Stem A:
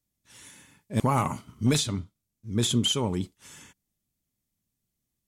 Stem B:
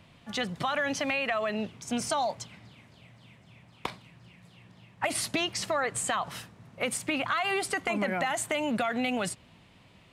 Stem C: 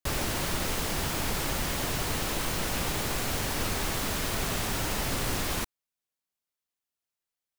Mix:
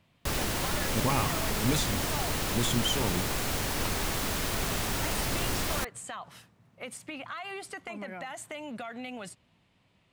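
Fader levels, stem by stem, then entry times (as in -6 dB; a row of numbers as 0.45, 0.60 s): -5.0, -10.5, -0.5 dB; 0.00, 0.00, 0.20 s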